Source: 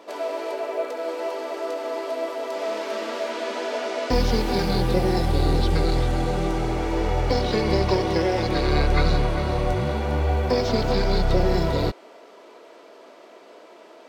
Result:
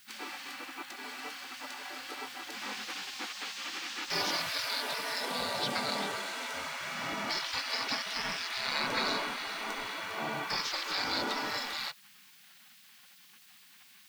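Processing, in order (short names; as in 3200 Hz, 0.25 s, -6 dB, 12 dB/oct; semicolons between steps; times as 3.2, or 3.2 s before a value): spectral gate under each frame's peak -20 dB weak; added noise blue -61 dBFS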